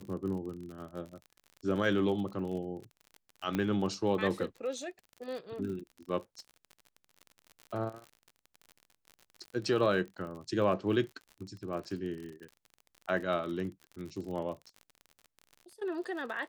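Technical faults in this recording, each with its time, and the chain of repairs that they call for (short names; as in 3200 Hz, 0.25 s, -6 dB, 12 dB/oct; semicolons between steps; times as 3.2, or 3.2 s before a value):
crackle 45/s -40 dBFS
3.55 pop -19 dBFS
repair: de-click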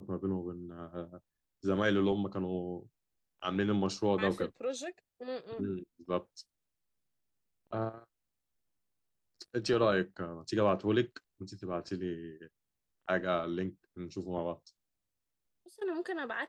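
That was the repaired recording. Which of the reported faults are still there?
none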